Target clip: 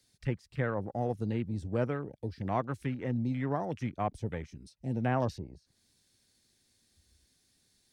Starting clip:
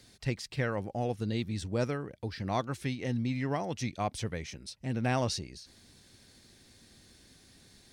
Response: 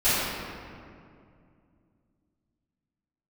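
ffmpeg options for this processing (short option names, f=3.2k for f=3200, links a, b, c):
-filter_complex "[0:a]afwtdn=0.00708,highshelf=f=4k:g=9.5,acrossover=split=180|1300|1700[a][b][c][d];[d]acompressor=threshold=-55dB:ratio=6[e];[a][b][c][e]amix=inputs=4:normalize=0"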